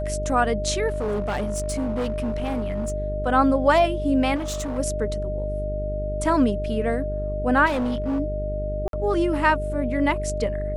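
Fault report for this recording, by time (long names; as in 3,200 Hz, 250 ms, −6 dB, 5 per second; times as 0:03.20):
mains buzz 50 Hz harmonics 9 −29 dBFS
whistle 610 Hz −28 dBFS
0:00.88–0:02.92: clipping −21.5 dBFS
0:04.35–0:04.79: clipping −25 dBFS
0:07.66–0:08.20: clipping −21 dBFS
0:08.88–0:08.93: drop-out 52 ms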